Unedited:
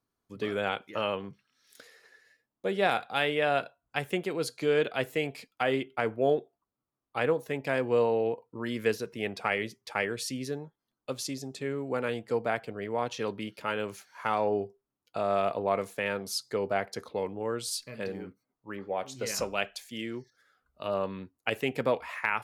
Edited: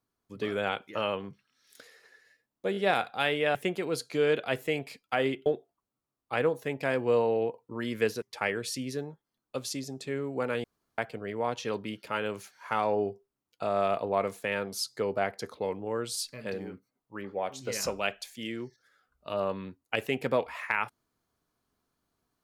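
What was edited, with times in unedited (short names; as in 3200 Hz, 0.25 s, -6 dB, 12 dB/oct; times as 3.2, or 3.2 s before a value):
2.72 stutter 0.02 s, 3 plays
3.51–4.03 cut
5.94–6.3 cut
9.06–9.76 cut
12.18–12.52 room tone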